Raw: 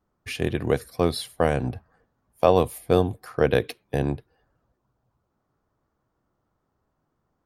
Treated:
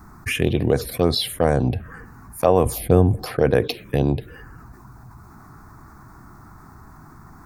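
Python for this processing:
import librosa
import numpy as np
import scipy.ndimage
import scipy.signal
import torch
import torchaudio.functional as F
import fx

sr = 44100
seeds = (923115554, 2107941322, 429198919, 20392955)

y = fx.low_shelf(x, sr, hz=240.0, db=10.5, at=(2.66, 3.24))
y = fx.env_phaser(y, sr, low_hz=530.0, high_hz=4100.0, full_db=-15.5)
y = fx.env_flatten(y, sr, amount_pct=50)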